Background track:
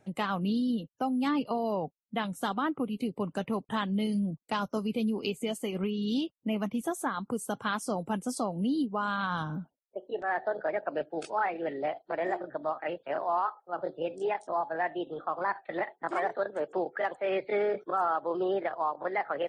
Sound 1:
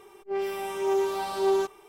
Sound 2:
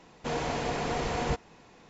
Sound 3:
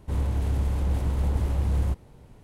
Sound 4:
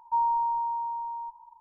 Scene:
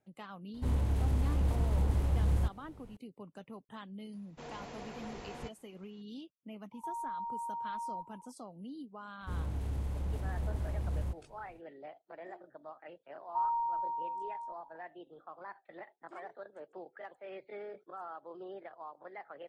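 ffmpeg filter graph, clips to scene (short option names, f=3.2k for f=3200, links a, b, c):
-filter_complex "[3:a]asplit=2[a][b];[4:a]asplit=2[c][d];[0:a]volume=-16.5dB[e];[c]alimiter=level_in=8dB:limit=-24dB:level=0:latency=1:release=71,volume=-8dB[f];[a]atrim=end=2.43,asetpts=PTS-STARTPTS,volume=-4.5dB,afade=t=in:d=0.004:c=hsin,afade=t=out:st=2.426:d=0.004:c=hsin,adelay=540[g];[2:a]atrim=end=1.89,asetpts=PTS-STARTPTS,volume=-15.5dB,afade=t=in:d=0.004:c=hsin,afade=t=out:st=1.886:d=0.004:c=hsin,adelay=182133S[h];[f]atrim=end=1.6,asetpts=PTS-STARTPTS,volume=-4dB,afade=t=in:d=0.004:c=hsin,afade=t=out:st=1.596:d=0.004:c=hsin,adelay=6720[i];[b]atrim=end=2.43,asetpts=PTS-STARTPTS,volume=-10.5dB,afade=t=in:d=0.05,afade=t=out:st=2.38:d=0.05,adelay=9190[j];[d]atrim=end=1.6,asetpts=PTS-STARTPTS,volume=-7dB,afade=t=in:d=0.004:c=hsin,afade=t=out:st=1.596:d=0.004:c=hsin,adelay=13230[k];[e][g][h][i][j][k]amix=inputs=6:normalize=0"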